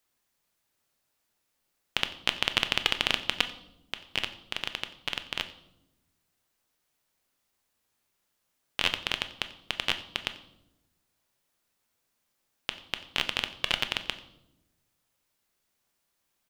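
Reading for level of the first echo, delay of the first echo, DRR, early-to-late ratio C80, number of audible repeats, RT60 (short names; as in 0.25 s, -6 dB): -20.5 dB, 90 ms, 9.0 dB, 15.5 dB, 1, 0.90 s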